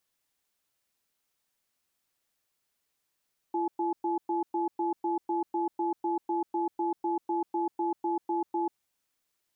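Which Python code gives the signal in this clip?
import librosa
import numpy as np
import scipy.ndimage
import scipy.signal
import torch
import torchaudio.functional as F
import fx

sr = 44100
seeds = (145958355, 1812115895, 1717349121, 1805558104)

y = fx.cadence(sr, length_s=5.21, low_hz=340.0, high_hz=855.0, on_s=0.14, off_s=0.11, level_db=-29.0)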